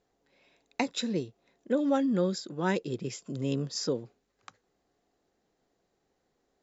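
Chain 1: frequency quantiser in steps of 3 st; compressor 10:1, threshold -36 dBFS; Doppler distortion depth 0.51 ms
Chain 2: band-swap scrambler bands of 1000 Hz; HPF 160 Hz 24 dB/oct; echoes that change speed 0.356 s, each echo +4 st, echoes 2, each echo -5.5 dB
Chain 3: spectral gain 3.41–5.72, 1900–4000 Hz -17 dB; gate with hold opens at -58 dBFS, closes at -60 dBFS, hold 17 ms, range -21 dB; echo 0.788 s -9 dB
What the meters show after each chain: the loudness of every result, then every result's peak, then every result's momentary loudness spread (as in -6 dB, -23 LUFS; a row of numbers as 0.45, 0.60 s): -40.5, -28.5, -31.5 LUFS; -25.0, -11.0, -11.5 dBFS; 15, 10, 15 LU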